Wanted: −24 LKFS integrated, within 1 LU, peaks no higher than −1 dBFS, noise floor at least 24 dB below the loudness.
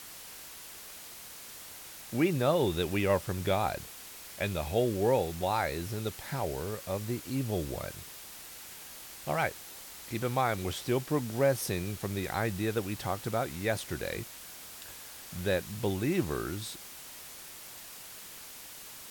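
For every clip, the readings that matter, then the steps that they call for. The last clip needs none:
background noise floor −47 dBFS; target noise floor −56 dBFS; integrated loudness −32.0 LKFS; sample peak −15.0 dBFS; target loudness −24.0 LKFS
→ broadband denoise 9 dB, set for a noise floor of −47 dBFS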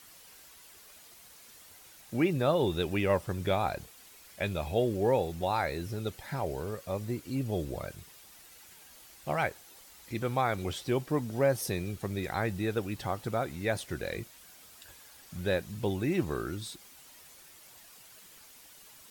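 background noise floor −55 dBFS; target noise floor −56 dBFS
→ broadband denoise 6 dB, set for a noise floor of −55 dBFS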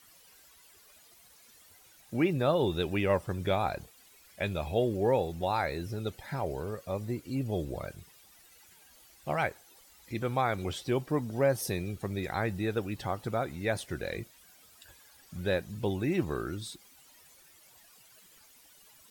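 background noise floor −59 dBFS; integrated loudness −32.0 LKFS; sample peak −15.5 dBFS; target loudness −24.0 LKFS
→ level +8 dB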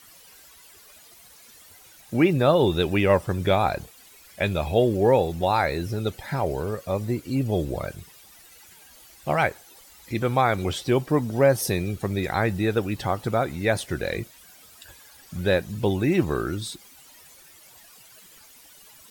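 integrated loudness −24.0 LKFS; sample peak −7.5 dBFS; background noise floor −51 dBFS

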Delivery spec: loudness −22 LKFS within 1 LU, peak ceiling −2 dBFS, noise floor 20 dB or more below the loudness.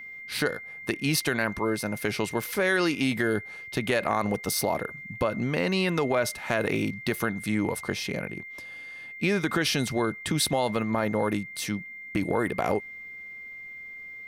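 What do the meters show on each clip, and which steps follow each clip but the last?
interfering tone 2,100 Hz; level of the tone −39 dBFS; integrated loudness −27.5 LKFS; sample peak −11.0 dBFS; target loudness −22.0 LKFS
→ notch filter 2,100 Hz, Q 30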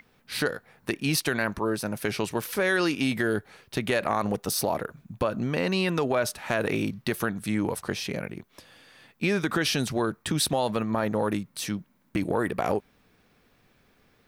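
interfering tone none found; integrated loudness −28.0 LKFS; sample peak −11.5 dBFS; target loudness −22.0 LKFS
→ level +6 dB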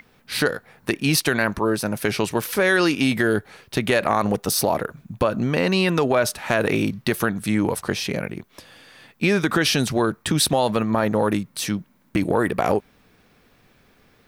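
integrated loudness −22.0 LKFS; sample peak −5.5 dBFS; background noise floor −59 dBFS

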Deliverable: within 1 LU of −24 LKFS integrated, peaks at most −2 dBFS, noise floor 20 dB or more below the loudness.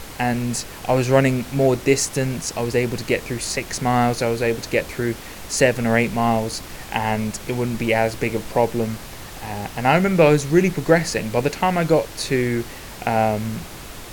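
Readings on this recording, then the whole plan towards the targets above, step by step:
background noise floor −37 dBFS; target noise floor −41 dBFS; integrated loudness −20.5 LKFS; sample peak −1.5 dBFS; target loudness −24.0 LKFS
→ noise reduction from a noise print 6 dB
level −3.5 dB

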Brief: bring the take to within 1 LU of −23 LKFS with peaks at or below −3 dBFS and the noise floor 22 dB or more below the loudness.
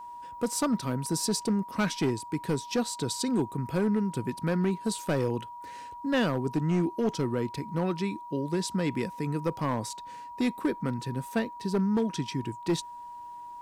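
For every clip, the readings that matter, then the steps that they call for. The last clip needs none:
share of clipped samples 1.2%; peaks flattened at −20.5 dBFS; interfering tone 960 Hz; level of the tone −40 dBFS; integrated loudness −30.0 LKFS; sample peak −20.5 dBFS; target loudness −23.0 LKFS
→ clipped peaks rebuilt −20.5 dBFS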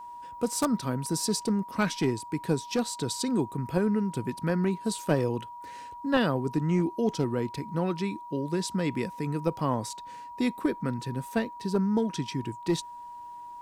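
share of clipped samples 0.0%; interfering tone 960 Hz; level of the tone −40 dBFS
→ notch filter 960 Hz, Q 30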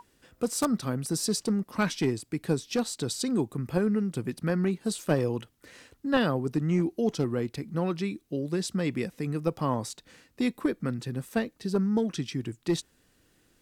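interfering tone none found; integrated loudness −29.5 LKFS; sample peak −11.0 dBFS; target loudness −23.0 LKFS
→ level +6.5 dB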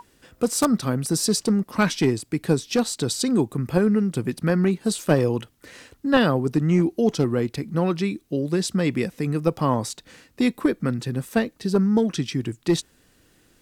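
integrated loudness −23.0 LKFS; sample peak −4.5 dBFS; background noise floor −61 dBFS

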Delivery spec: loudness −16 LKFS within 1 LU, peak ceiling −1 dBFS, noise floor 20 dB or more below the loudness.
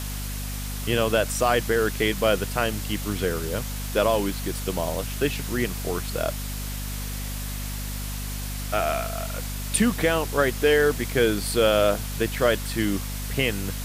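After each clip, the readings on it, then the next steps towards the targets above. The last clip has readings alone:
mains hum 50 Hz; hum harmonics up to 250 Hz; level of the hum −29 dBFS; background noise floor −31 dBFS; target noise floor −45 dBFS; integrated loudness −25.0 LKFS; sample peak −8.5 dBFS; target loudness −16.0 LKFS
→ mains-hum notches 50/100/150/200/250 Hz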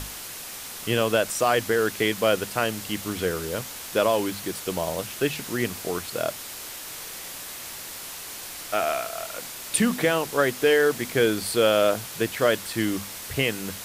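mains hum none found; background noise floor −38 dBFS; target noise floor −46 dBFS
→ broadband denoise 8 dB, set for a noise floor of −38 dBFS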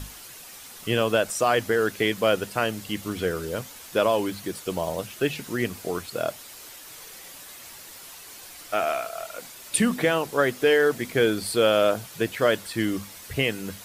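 background noise floor −44 dBFS; target noise floor −45 dBFS
→ broadband denoise 6 dB, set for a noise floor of −44 dBFS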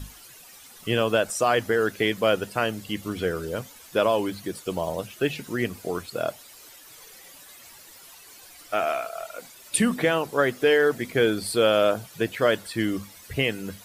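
background noise floor −48 dBFS; integrated loudness −25.0 LKFS; sample peak −9.0 dBFS; target loudness −16.0 LKFS
→ level +9 dB
brickwall limiter −1 dBFS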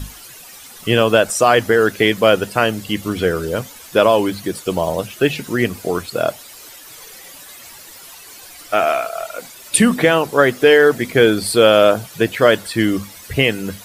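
integrated loudness −16.0 LKFS; sample peak −1.0 dBFS; background noise floor −39 dBFS

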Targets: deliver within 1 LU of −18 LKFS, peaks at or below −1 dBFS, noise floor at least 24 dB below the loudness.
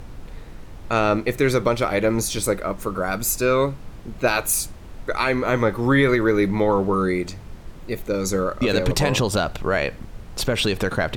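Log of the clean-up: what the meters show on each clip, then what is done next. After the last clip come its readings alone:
background noise floor −40 dBFS; target noise floor −46 dBFS; integrated loudness −21.5 LKFS; sample peak −7.0 dBFS; target loudness −18.0 LKFS
→ noise reduction from a noise print 6 dB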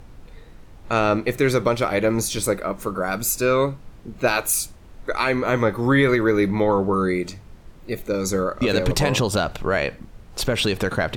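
background noise floor −45 dBFS; target noise floor −46 dBFS
→ noise reduction from a noise print 6 dB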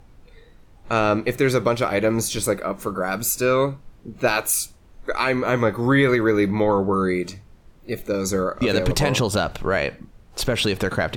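background noise floor −50 dBFS; integrated loudness −21.5 LKFS; sample peak −7.0 dBFS; target loudness −18.0 LKFS
→ level +3.5 dB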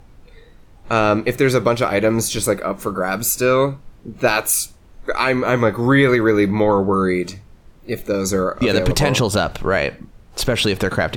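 integrated loudness −18.0 LKFS; sample peak −3.5 dBFS; background noise floor −47 dBFS

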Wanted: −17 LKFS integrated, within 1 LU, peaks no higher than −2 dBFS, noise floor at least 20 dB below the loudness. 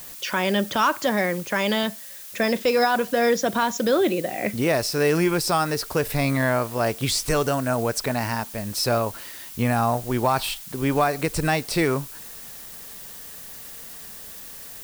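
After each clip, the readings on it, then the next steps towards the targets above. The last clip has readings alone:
background noise floor −40 dBFS; target noise floor −43 dBFS; integrated loudness −23.0 LKFS; sample peak −9.0 dBFS; target loudness −17.0 LKFS
→ noise reduction from a noise print 6 dB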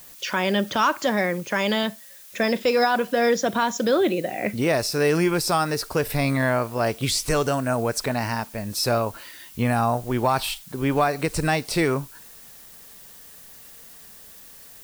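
background noise floor −46 dBFS; integrated loudness −23.0 LKFS; sample peak −9.0 dBFS; target loudness −17.0 LKFS
→ level +6 dB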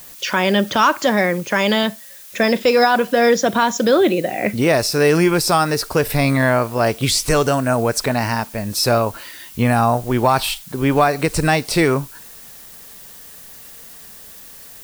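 integrated loudness −17.0 LKFS; sample peak −3.0 dBFS; background noise floor −40 dBFS

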